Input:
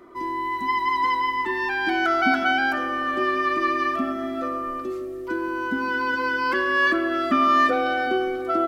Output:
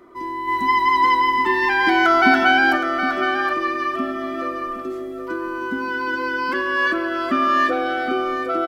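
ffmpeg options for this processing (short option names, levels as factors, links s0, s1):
-filter_complex "[0:a]asplit=3[s0][s1][s2];[s0]afade=t=out:st=0.47:d=0.02[s3];[s1]acontrast=56,afade=t=in:st=0.47:d=0.02,afade=t=out:st=2.76:d=0.02[s4];[s2]afade=t=in:st=2.76:d=0.02[s5];[s3][s4][s5]amix=inputs=3:normalize=0,aecho=1:1:767:0.355"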